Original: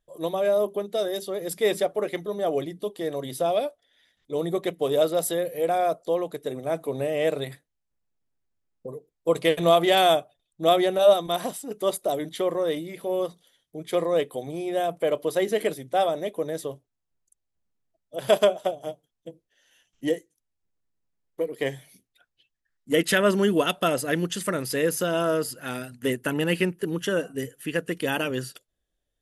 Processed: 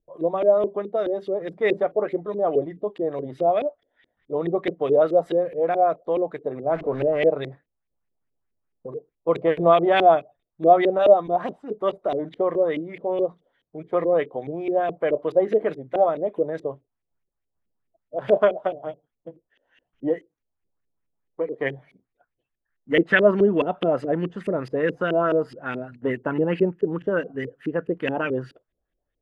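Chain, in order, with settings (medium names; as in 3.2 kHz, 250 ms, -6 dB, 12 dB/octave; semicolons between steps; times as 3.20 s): 6.71–7.28 s: jump at every zero crossing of -33.5 dBFS; LFO low-pass saw up 4.7 Hz 340–2700 Hz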